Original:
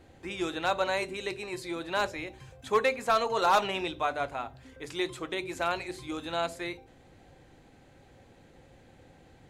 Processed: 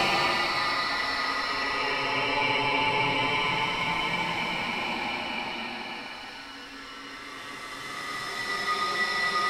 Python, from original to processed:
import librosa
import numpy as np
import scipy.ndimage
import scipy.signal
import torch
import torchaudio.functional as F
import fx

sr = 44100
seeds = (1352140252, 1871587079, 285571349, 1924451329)

p1 = x + fx.echo_wet_highpass(x, sr, ms=754, feedback_pct=53, hz=1500.0, wet_db=-14, dry=0)
p2 = p1 * np.sin(2.0 * np.pi * 1600.0 * np.arange(len(p1)) / sr)
p3 = fx.hum_notches(p2, sr, base_hz=60, count=2)
p4 = fx.paulstretch(p3, sr, seeds[0], factor=6.8, window_s=0.5, from_s=3.66)
y = p4 * librosa.db_to_amplitude(7.5)